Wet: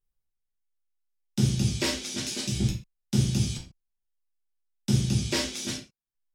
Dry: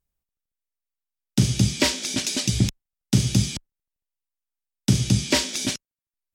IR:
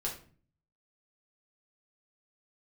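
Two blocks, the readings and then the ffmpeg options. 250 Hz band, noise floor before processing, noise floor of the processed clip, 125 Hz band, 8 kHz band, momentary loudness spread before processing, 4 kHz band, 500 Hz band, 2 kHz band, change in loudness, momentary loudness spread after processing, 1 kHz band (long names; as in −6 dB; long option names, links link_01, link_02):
−4.5 dB, below −85 dBFS, −84 dBFS, −4.0 dB, −7.0 dB, 8 LU, −6.0 dB, −4.5 dB, −6.5 dB, −5.0 dB, 12 LU, −6.5 dB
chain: -filter_complex "[1:a]atrim=start_sample=2205,atrim=end_sample=6615[link_01];[0:a][link_01]afir=irnorm=-1:irlink=0,volume=-8dB"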